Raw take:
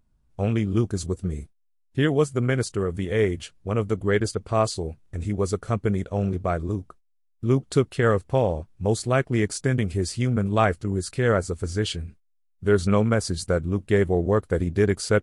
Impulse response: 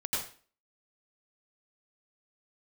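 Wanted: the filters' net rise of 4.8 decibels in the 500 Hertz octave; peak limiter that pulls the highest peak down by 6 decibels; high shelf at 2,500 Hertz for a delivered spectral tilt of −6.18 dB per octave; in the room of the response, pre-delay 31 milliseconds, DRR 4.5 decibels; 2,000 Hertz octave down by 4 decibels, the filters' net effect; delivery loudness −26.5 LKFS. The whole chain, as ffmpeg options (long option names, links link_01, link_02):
-filter_complex "[0:a]equalizer=frequency=500:width_type=o:gain=6,equalizer=frequency=2000:width_type=o:gain=-7.5,highshelf=frequency=2500:gain=4,alimiter=limit=-10.5dB:level=0:latency=1,asplit=2[link_01][link_02];[1:a]atrim=start_sample=2205,adelay=31[link_03];[link_02][link_03]afir=irnorm=-1:irlink=0,volume=-10dB[link_04];[link_01][link_04]amix=inputs=2:normalize=0,volume=-4.5dB"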